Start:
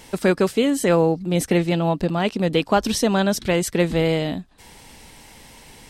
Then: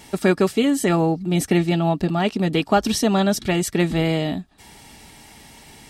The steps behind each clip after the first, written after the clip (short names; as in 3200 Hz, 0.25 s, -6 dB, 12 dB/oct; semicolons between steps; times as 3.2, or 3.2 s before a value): notch comb 510 Hz; gain +1.5 dB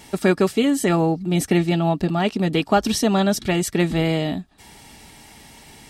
nothing audible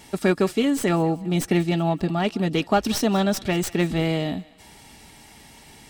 tracing distortion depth 0.036 ms; thinning echo 0.188 s, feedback 43%, high-pass 630 Hz, level -19.5 dB; gain -2.5 dB